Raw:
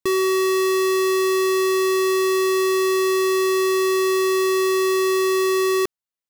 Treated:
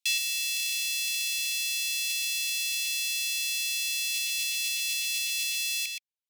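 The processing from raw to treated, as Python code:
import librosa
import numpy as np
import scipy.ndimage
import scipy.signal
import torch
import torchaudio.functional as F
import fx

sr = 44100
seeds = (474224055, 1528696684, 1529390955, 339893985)

y = fx.dereverb_blind(x, sr, rt60_s=0.57)
y = scipy.signal.sosfilt(scipy.signal.butter(16, 2200.0, 'highpass', fs=sr, output='sos'), y)
y = fx.high_shelf(y, sr, hz=8200.0, db=-9.0)
y = y + 10.0 ** (-8.0 / 20.0) * np.pad(y, (int(123 * sr / 1000.0), 0))[:len(y)]
y = y * 10.0 ** (7.5 / 20.0)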